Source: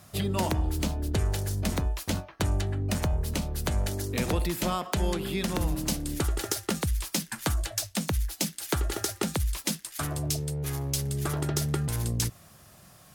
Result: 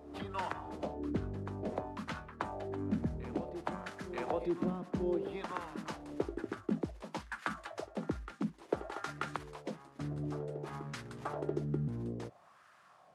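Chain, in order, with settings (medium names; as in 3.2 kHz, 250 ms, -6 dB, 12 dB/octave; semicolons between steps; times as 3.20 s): CVSD coder 64 kbps; wah-wah 0.57 Hz 230–1400 Hz, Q 2.2; reverse echo 934 ms -10.5 dB; trim +1.5 dB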